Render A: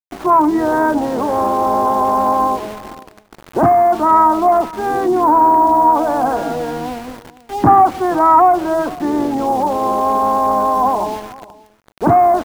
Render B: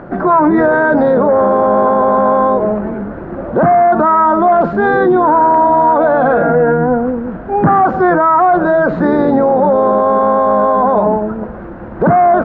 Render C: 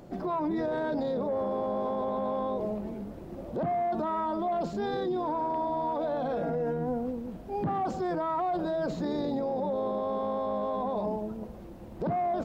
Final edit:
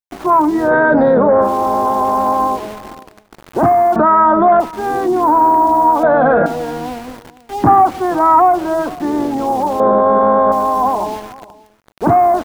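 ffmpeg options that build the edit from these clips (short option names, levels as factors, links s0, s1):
-filter_complex "[1:a]asplit=4[s0][s1][s2][s3];[0:a]asplit=5[s4][s5][s6][s7][s8];[s4]atrim=end=0.72[s9];[s0]atrim=start=0.62:end=1.5[s10];[s5]atrim=start=1.4:end=3.962[s11];[s1]atrim=start=3.958:end=4.602[s12];[s6]atrim=start=4.598:end=6.032[s13];[s2]atrim=start=6.028:end=6.462[s14];[s7]atrim=start=6.458:end=9.802[s15];[s3]atrim=start=9.798:end=10.522[s16];[s8]atrim=start=10.518[s17];[s9][s10]acrossfade=d=0.1:c1=tri:c2=tri[s18];[s18][s11]acrossfade=d=0.1:c1=tri:c2=tri[s19];[s19][s12]acrossfade=d=0.004:c1=hsin:c2=hsin[s20];[s20][s13]acrossfade=d=0.004:c1=hsin:c2=hsin[s21];[s21][s14]acrossfade=d=0.004:c1=hsin:c2=hsin[s22];[s22][s15]acrossfade=d=0.004:c1=hsin:c2=hsin[s23];[s23][s16]acrossfade=d=0.004:c1=hsin:c2=hsin[s24];[s24][s17]acrossfade=d=0.004:c1=hsin:c2=hsin"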